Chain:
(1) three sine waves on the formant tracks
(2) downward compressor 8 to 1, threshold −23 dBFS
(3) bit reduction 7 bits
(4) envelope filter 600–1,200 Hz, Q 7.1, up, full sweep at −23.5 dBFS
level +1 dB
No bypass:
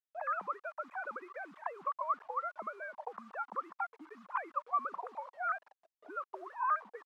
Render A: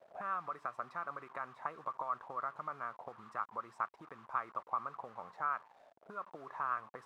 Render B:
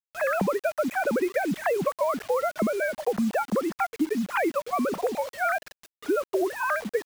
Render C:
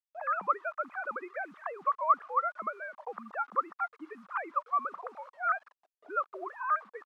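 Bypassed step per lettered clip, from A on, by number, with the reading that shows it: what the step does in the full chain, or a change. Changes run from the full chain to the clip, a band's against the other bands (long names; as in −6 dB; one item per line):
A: 1, 250 Hz band +2.0 dB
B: 4, 250 Hz band +16.5 dB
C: 2, average gain reduction 4.0 dB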